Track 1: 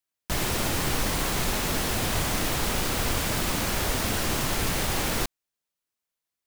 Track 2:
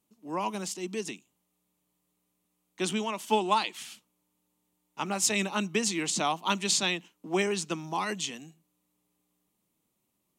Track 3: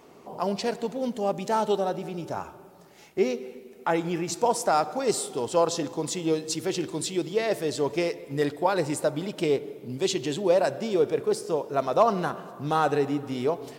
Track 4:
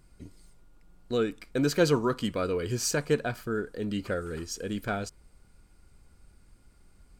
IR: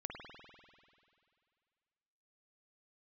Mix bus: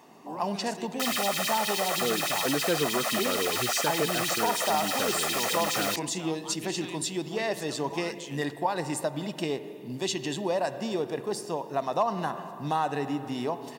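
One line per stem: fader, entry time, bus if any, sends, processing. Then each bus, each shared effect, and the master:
-2.0 dB, 0.70 s, no send, LFO high-pass sine 9.6 Hz 550–3800 Hz; comb 1.6 ms, depth 98%
-2.5 dB, 0.00 s, no send, compressor, threshold -34 dBFS, peak gain reduction 13.5 dB; limiter -28 dBFS, peak gain reduction 7 dB
-2.0 dB, 0.00 s, send -11.5 dB, comb 1.1 ms, depth 51%
+1.0 dB, 0.90 s, no send, dry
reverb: on, RT60 2.3 s, pre-delay 49 ms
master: HPF 160 Hz 12 dB/oct; compressor 2:1, threshold -26 dBFS, peak gain reduction 7 dB

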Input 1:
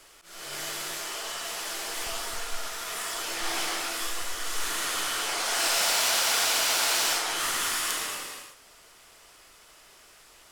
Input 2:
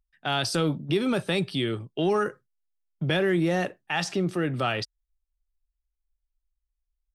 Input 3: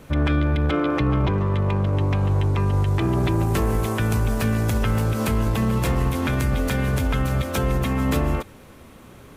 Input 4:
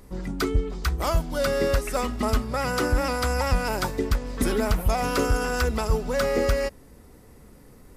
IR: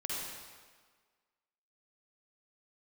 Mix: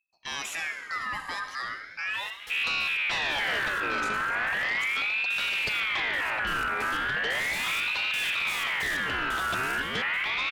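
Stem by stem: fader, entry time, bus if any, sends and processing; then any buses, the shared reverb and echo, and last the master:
-11.5 dB, 1.80 s, send -7.5 dB, step gate "..x.x.x..xxx" 90 bpm
-6.0 dB, 0.00 s, send -8 dB, dry
-1.5 dB, 2.40 s, no send, stepped low-pass 4.2 Hz 860–2000 Hz
off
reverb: on, RT60 1.6 s, pre-delay 45 ms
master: high shelf 11000 Hz +3.5 dB; soft clip -22.5 dBFS, distortion -11 dB; ring modulator with a swept carrier 2000 Hz, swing 30%, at 0.37 Hz

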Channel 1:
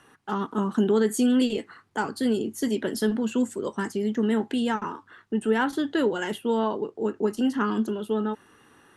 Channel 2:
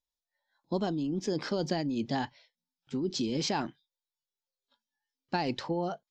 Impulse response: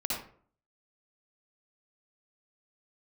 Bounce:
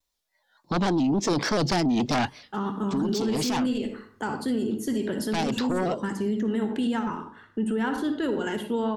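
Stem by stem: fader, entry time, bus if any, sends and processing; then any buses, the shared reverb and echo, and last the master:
-4.5 dB, 2.25 s, send -9.5 dB, low shelf 140 Hz +11 dB
-4.0 dB, 0.00 s, no send, sine folder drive 12 dB, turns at -15.5 dBFS; shaped vibrato square 3.5 Hz, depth 100 cents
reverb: on, RT60 0.50 s, pre-delay 52 ms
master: limiter -19 dBFS, peak gain reduction 10.5 dB

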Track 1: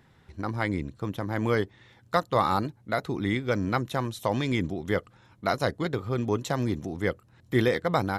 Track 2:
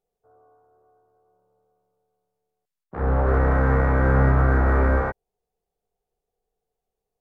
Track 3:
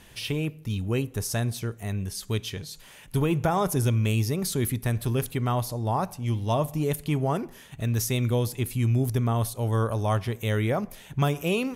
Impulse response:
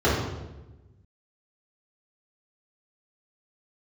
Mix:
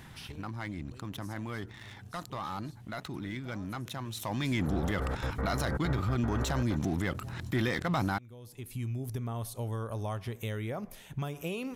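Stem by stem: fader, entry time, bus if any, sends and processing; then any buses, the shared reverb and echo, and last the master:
4.09 s -20 dB -> 4.64 s -9.5 dB, 0.00 s, no send, bell 470 Hz -11 dB 0.59 oct; sample leveller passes 2; fast leveller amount 70%
-13.5 dB, 1.65 s, no send, step gate "x.x.xxxxx.x" 193 bpm
-4.5 dB, 0.00 s, no send, compressor 12:1, threshold -27 dBFS, peak gain reduction 9 dB; auto duck -18 dB, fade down 0.50 s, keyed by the first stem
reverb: off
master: limiter -22 dBFS, peak gain reduction 8 dB

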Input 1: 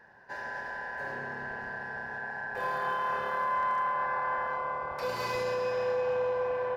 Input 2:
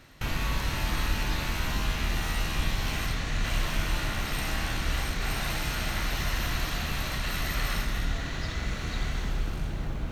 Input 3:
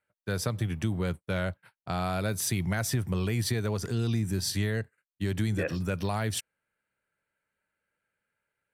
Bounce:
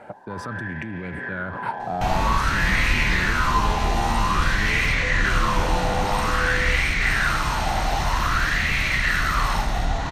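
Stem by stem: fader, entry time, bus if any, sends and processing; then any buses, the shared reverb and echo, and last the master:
-1.0 dB, 0.00 s, bus A, no send, tube stage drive 35 dB, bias 0.65
+2.5 dB, 1.80 s, no bus, no send, tone controls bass +3 dB, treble +10 dB
-10.0 dB, 0.00 s, bus A, no send, fast leveller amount 100%
bus A: 0.0 dB, bell 270 Hz +13 dB 1.9 oct; limiter -25 dBFS, peak gain reduction 10 dB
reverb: off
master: LPF 10000 Hz 12 dB/oct; high shelf 4400 Hz -10 dB; LFO bell 0.51 Hz 760–2200 Hz +18 dB

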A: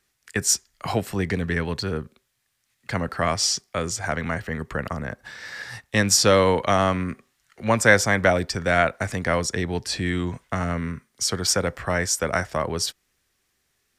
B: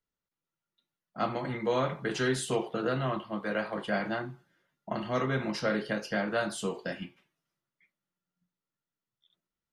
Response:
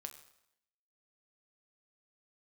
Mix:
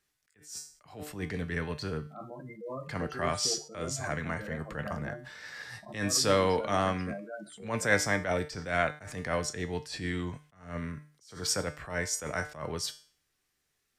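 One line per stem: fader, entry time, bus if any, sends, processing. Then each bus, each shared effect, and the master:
+1.0 dB, 0.00 s, no send, dry
0.0 dB, 0.95 s, no send, spectral gate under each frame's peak -10 dB strong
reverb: off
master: resonator 150 Hz, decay 0.45 s, harmonics all, mix 70%; attack slew limiter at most 130 dB/s

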